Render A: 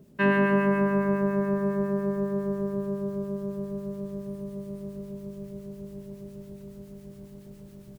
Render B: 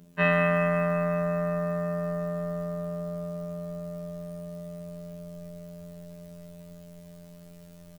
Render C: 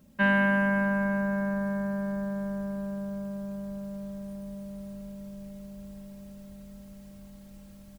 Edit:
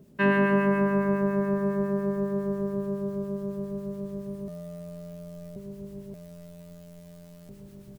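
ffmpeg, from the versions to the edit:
-filter_complex "[1:a]asplit=2[s0][s1];[0:a]asplit=3[s2][s3][s4];[s2]atrim=end=4.482[s5];[s0]atrim=start=4.478:end=5.562[s6];[s3]atrim=start=5.558:end=6.142[s7];[s1]atrim=start=6.138:end=7.492[s8];[s4]atrim=start=7.488[s9];[s5][s6]acrossfade=d=0.004:c1=hsin:c2=hsin[s10];[s10][s7]acrossfade=d=0.004:c1=hsin:c2=hsin[s11];[s11][s8]acrossfade=d=0.004:c1=hsin:c2=hsin[s12];[s12][s9]acrossfade=d=0.004:c1=hsin:c2=hsin"

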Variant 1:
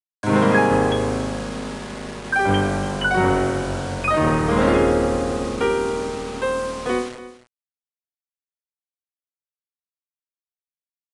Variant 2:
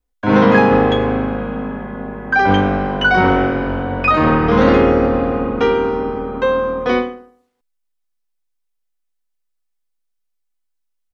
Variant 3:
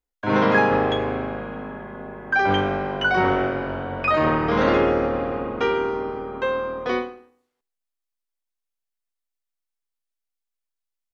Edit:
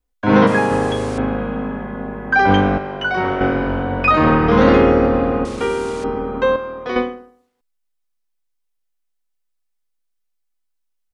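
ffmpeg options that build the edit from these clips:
-filter_complex "[0:a]asplit=2[s0][s1];[2:a]asplit=2[s2][s3];[1:a]asplit=5[s4][s5][s6][s7][s8];[s4]atrim=end=0.472[s9];[s0]atrim=start=0.468:end=1.182[s10];[s5]atrim=start=1.178:end=2.782[s11];[s2]atrim=start=2.778:end=3.412[s12];[s6]atrim=start=3.408:end=5.452[s13];[s1]atrim=start=5.448:end=6.042[s14];[s7]atrim=start=6.038:end=6.562[s15];[s3]atrim=start=6.558:end=6.962[s16];[s8]atrim=start=6.958[s17];[s9][s10]acrossfade=d=0.004:c1=hsin:c2=hsin[s18];[s18][s11]acrossfade=d=0.004:c1=hsin:c2=hsin[s19];[s19][s12]acrossfade=d=0.004:c1=hsin:c2=hsin[s20];[s20][s13]acrossfade=d=0.004:c1=hsin:c2=hsin[s21];[s21][s14]acrossfade=d=0.004:c1=hsin:c2=hsin[s22];[s22][s15]acrossfade=d=0.004:c1=hsin:c2=hsin[s23];[s23][s16]acrossfade=d=0.004:c1=hsin:c2=hsin[s24];[s24][s17]acrossfade=d=0.004:c1=hsin:c2=hsin"

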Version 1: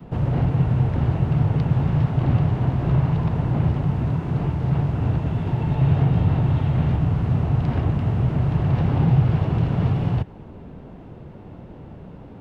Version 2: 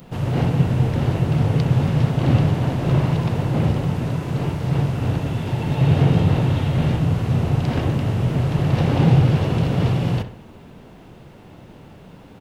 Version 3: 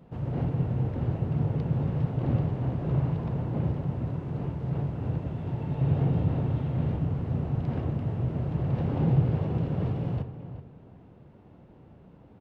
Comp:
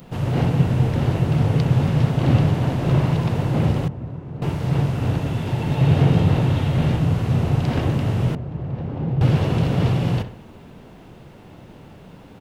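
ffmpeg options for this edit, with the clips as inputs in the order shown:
-filter_complex "[2:a]asplit=2[s0][s1];[1:a]asplit=3[s2][s3][s4];[s2]atrim=end=3.882[s5];[s0]atrim=start=3.878:end=4.422[s6];[s3]atrim=start=4.418:end=8.352[s7];[s1]atrim=start=8.348:end=9.212[s8];[s4]atrim=start=9.208[s9];[s5][s6]acrossfade=d=0.004:c1=hsin:c2=hsin[s10];[s10][s7]acrossfade=d=0.004:c1=hsin:c2=hsin[s11];[s11][s8]acrossfade=d=0.004:c1=hsin:c2=hsin[s12];[s12][s9]acrossfade=d=0.004:c1=hsin:c2=hsin"

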